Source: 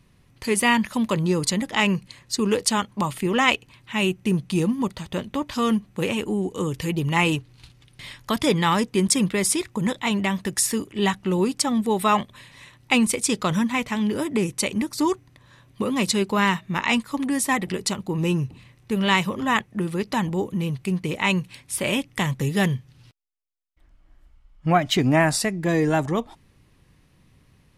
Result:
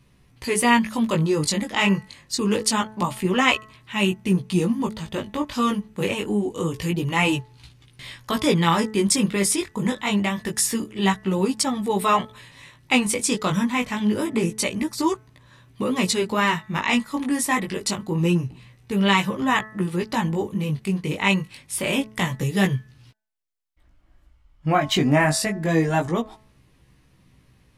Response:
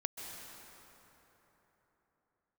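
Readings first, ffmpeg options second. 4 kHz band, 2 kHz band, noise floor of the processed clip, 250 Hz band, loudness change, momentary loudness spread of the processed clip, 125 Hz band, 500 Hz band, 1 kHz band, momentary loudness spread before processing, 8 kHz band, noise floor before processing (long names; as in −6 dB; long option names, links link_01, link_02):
+0.5 dB, +0.5 dB, −58 dBFS, +0.5 dB, +0.5 dB, 8 LU, +0.5 dB, 0.0 dB, +0.5 dB, 8 LU, +0.5 dB, −58 dBFS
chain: -af "flanger=delay=15:depth=5.6:speed=0.26,bandreject=frequency=216.6:width_type=h:width=4,bandreject=frequency=433.2:width_type=h:width=4,bandreject=frequency=649.8:width_type=h:width=4,bandreject=frequency=866.4:width_type=h:width=4,bandreject=frequency=1083:width_type=h:width=4,bandreject=frequency=1299.6:width_type=h:width=4,bandreject=frequency=1516.2:width_type=h:width=4,bandreject=frequency=1732.8:width_type=h:width=4,bandreject=frequency=1949.4:width_type=h:width=4,volume=3.5dB"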